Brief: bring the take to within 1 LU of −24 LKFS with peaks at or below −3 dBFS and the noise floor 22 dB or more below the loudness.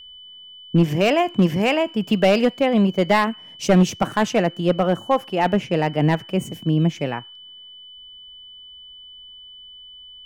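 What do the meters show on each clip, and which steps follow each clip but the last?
share of clipped samples 1.2%; peaks flattened at −9.0 dBFS; interfering tone 3,000 Hz; level of the tone −40 dBFS; integrated loudness −20.0 LKFS; sample peak −9.0 dBFS; target loudness −24.0 LKFS
→ clipped peaks rebuilt −9 dBFS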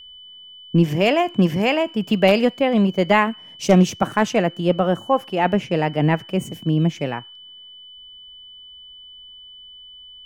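share of clipped samples 0.0%; interfering tone 3,000 Hz; level of the tone −40 dBFS
→ notch filter 3,000 Hz, Q 30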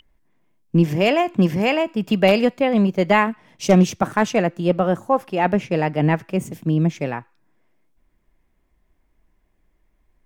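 interfering tone none found; integrated loudness −19.5 LKFS; sample peak −2.0 dBFS; target loudness −24.0 LKFS
→ level −4.5 dB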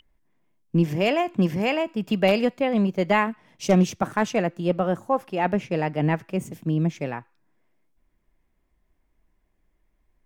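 integrated loudness −24.0 LKFS; sample peak −6.5 dBFS; background noise floor −70 dBFS

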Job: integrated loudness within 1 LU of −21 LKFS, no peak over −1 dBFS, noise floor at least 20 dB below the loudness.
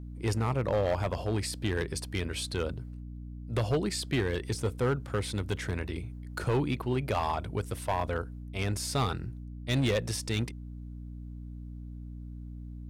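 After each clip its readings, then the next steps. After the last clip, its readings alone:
share of clipped samples 1.5%; peaks flattened at −22.0 dBFS; mains hum 60 Hz; hum harmonics up to 300 Hz; level of the hum −39 dBFS; integrated loudness −32.0 LKFS; sample peak −22.0 dBFS; target loudness −21.0 LKFS
→ clipped peaks rebuilt −22 dBFS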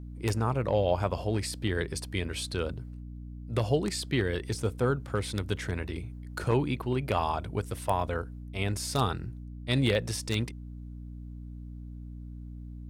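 share of clipped samples 0.0%; mains hum 60 Hz; hum harmonics up to 300 Hz; level of the hum −39 dBFS
→ hum removal 60 Hz, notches 5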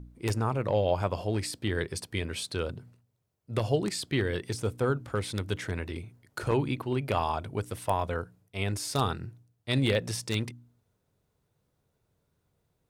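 mains hum none found; integrated loudness −31.0 LKFS; sample peak −13.0 dBFS; target loudness −21.0 LKFS
→ level +10 dB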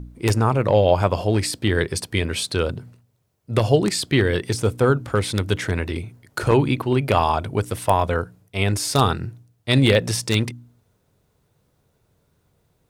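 integrated loudness −21.0 LKFS; sample peak −3.0 dBFS; background noise floor −67 dBFS

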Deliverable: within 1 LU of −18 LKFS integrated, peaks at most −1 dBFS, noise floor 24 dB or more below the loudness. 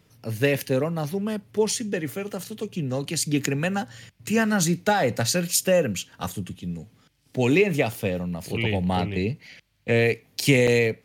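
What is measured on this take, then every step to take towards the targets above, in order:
number of dropouts 1; longest dropout 5.8 ms; integrated loudness −24.5 LKFS; sample peak −6.5 dBFS; target loudness −18.0 LKFS
→ repair the gap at 0:10.67, 5.8 ms
level +6.5 dB
brickwall limiter −1 dBFS

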